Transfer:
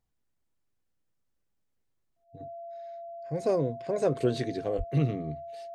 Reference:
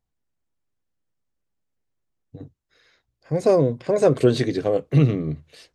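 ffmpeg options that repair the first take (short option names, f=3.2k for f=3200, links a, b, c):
-filter_complex "[0:a]bandreject=f=680:w=30,asplit=3[a][b][c];[a]afade=t=out:st=4.77:d=0.02[d];[b]highpass=f=140:w=0.5412,highpass=f=140:w=1.3066,afade=t=in:st=4.77:d=0.02,afade=t=out:st=4.89:d=0.02[e];[c]afade=t=in:st=4.89:d=0.02[f];[d][e][f]amix=inputs=3:normalize=0,asetnsamples=n=441:p=0,asendcmd='2.24 volume volume 9.5dB',volume=0dB"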